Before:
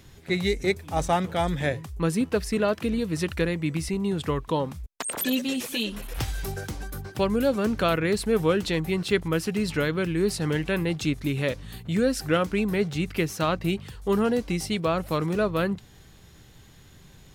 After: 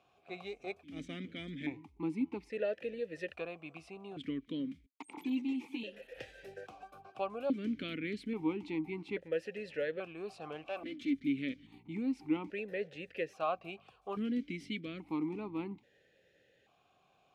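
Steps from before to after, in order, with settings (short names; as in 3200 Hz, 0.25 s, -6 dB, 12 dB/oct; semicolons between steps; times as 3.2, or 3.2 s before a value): 10.64–11.15 minimum comb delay 3.4 ms; vowel sequencer 1.2 Hz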